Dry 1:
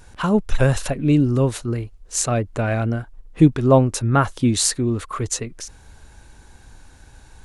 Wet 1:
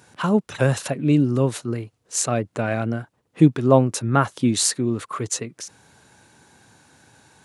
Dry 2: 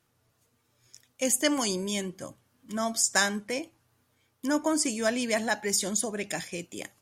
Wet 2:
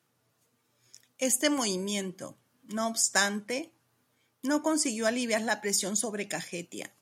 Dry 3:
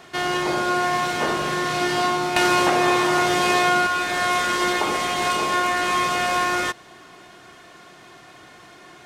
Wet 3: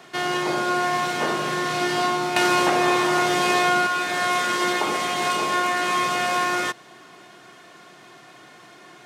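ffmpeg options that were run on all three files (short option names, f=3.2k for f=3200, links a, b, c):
-af "highpass=f=120:w=0.5412,highpass=f=120:w=1.3066,volume=-1dB"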